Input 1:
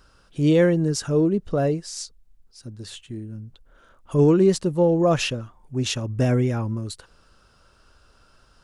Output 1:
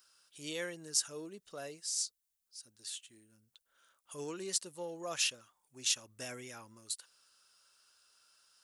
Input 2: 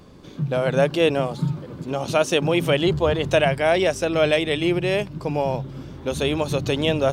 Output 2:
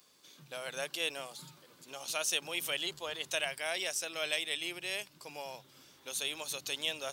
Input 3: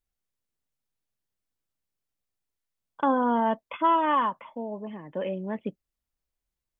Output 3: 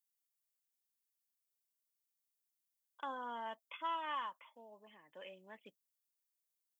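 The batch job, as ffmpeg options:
-af "aderivative,aeval=exprs='0.224*(cos(1*acos(clip(val(0)/0.224,-1,1)))-cos(1*PI/2))+0.00282*(cos(4*acos(clip(val(0)/0.224,-1,1)))-cos(4*PI/2))':c=same"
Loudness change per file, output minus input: -16.0 LU, -14.0 LU, -16.5 LU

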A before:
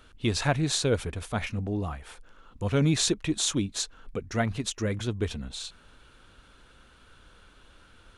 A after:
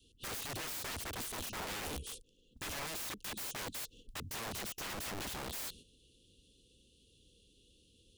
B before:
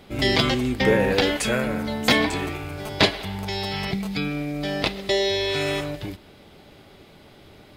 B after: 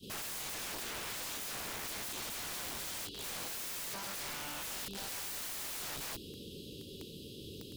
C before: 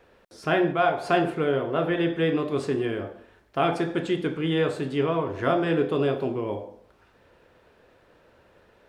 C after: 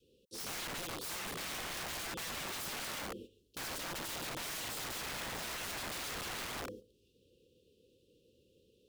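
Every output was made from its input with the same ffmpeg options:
-af "highpass=f=69:p=1,highshelf=f=5100:g=6,acompressor=threshold=0.0447:ratio=8,adynamicequalizer=threshold=0.00501:dfrequency=580:dqfactor=2.2:tfrequency=580:tqfactor=2.2:attack=5:release=100:ratio=0.375:range=2:mode=cutabove:tftype=bell,asuperstop=centerf=1200:order=20:qfactor=0.54,agate=range=0.316:threshold=0.00251:ratio=16:detection=peak,alimiter=level_in=1.06:limit=0.0631:level=0:latency=1:release=276,volume=0.944,aeval=exprs='(mod(89.1*val(0)+1,2)-1)/89.1':c=same,volume=1.33"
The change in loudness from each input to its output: -12.0 LU, -16.5 LU, -14.0 LU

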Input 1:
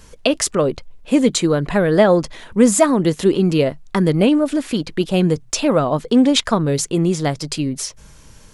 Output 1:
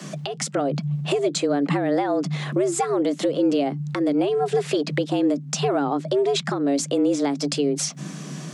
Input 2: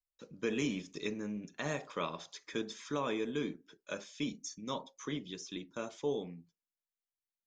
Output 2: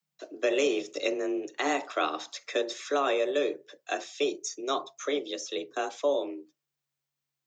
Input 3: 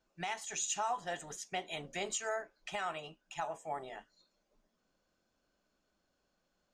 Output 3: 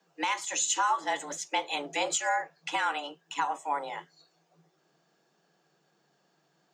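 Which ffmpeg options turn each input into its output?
-filter_complex "[0:a]acrossover=split=120[s0][s1];[s1]acompressor=threshold=0.0355:ratio=5[s2];[s0][s2]amix=inputs=2:normalize=0,afreqshift=140,equalizer=f=11000:t=o:w=0.33:g=-13,alimiter=limit=0.0841:level=0:latency=1:release=281,volume=2.82"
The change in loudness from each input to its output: -6.0 LU, +8.5 LU, +8.5 LU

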